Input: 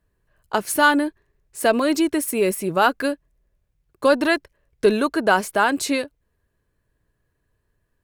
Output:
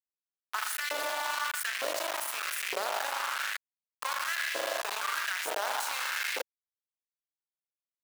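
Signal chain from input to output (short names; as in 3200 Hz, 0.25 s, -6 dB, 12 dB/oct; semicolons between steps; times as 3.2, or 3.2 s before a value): bell 290 Hz -12 dB 1.6 oct; compressor 3:1, threshold -23 dBFS, peak gain reduction 9 dB; spring tank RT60 2.5 s, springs 39 ms, chirp 70 ms, DRR 1.5 dB; level quantiser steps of 20 dB; bit-crush 6-bit; LFO high-pass saw up 1.1 Hz 450–2100 Hz; gain +4.5 dB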